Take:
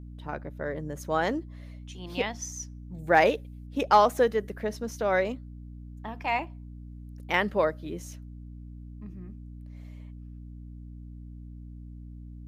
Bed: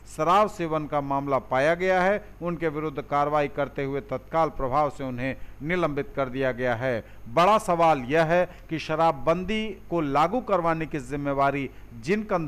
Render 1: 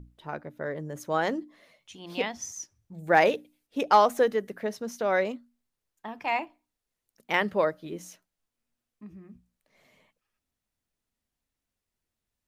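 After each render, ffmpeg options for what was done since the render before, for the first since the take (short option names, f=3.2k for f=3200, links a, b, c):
-af "bandreject=f=60:t=h:w=6,bandreject=f=120:t=h:w=6,bandreject=f=180:t=h:w=6,bandreject=f=240:t=h:w=6,bandreject=f=300:t=h:w=6"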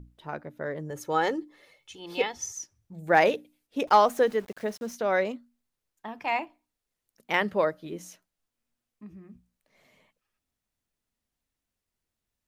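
-filter_complex "[0:a]asettb=1/sr,asplit=3[a][b][c];[a]atrim=end=0.904[d];[b]atrim=start=0.9:end=2.59,asetpts=PTS-STARTPTS,afade=t=in:d=0.004:c=qsin,afade=t=out:st=1.686:d=0.004:c=qsin,aecho=1:1:2.3:0.65,atrim=end_sample=74529[e];[c]atrim=start=2.586[f];[d][e]acrossfade=d=0.004:c1=hsin:c2=qsin[g];[g][f]acrossfade=d=0.004:c1=qsin:c2=hsin,asettb=1/sr,asplit=3[h][i][j];[h]atrim=end=3.874[k];[i]atrim=start=3.87:end=4.95,asetpts=PTS-STARTPTS,afade=t=in:d=0.004:c=qsin,afade=t=out:st=1.076:d=0.004:c=qsin,aeval=exprs='val(0)*gte(abs(val(0)),0.00501)':c=same[l];[j]atrim=start=4.946[m];[k][l]acrossfade=d=0.004:c1=hsin:c2=qsin[n];[n][m]acrossfade=d=0.004:c1=qsin:c2=hsin"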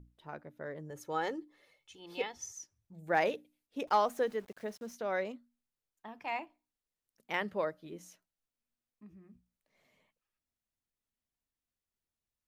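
-af "volume=-9dB"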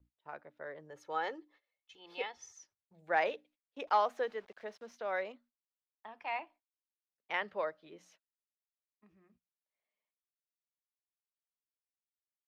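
-filter_complex "[0:a]agate=range=-20dB:threshold=-59dB:ratio=16:detection=peak,acrossover=split=450 4900:gain=0.2 1 0.1[a][b][c];[a][b][c]amix=inputs=3:normalize=0"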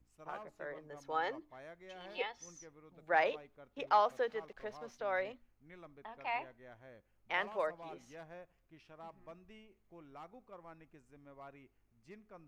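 -filter_complex "[1:a]volume=-30.5dB[a];[0:a][a]amix=inputs=2:normalize=0"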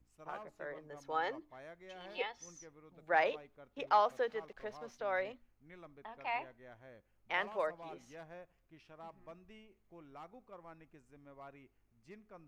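-af anull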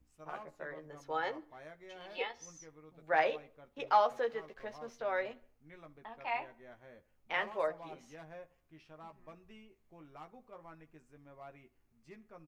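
-filter_complex "[0:a]asplit=2[a][b];[b]adelay=13,volume=-5.5dB[c];[a][c]amix=inputs=2:normalize=0,asplit=2[d][e];[e]adelay=64,lowpass=f=2.9k:p=1,volume=-22.5dB,asplit=2[f][g];[g]adelay=64,lowpass=f=2.9k:p=1,volume=0.52,asplit=2[h][i];[i]adelay=64,lowpass=f=2.9k:p=1,volume=0.52,asplit=2[j][k];[k]adelay=64,lowpass=f=2.9k:p=1,volume=0.52[l];[d][f][h][j][l]amix=inputs=5:normalize=0"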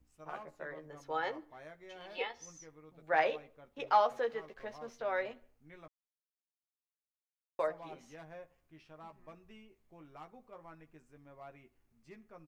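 -filter_complex "[0:a]asplit=3[a][b][c];[a]atrim=end=5.88,asetpts=PTS-STARTPTS,afade=t=out:st=5.876:d=0.004:c=hsin[d];[b]atrim=start=5.88:end=7.59,asetpts=PTS-STARTPTS,volume=0[e];[c]atrim=start=7.59,asetpts=PTS-STARTPTS,afade=t=in:d=0.004:c=hsin[f];[d][e][f]concat=n=3:v=0:a=1"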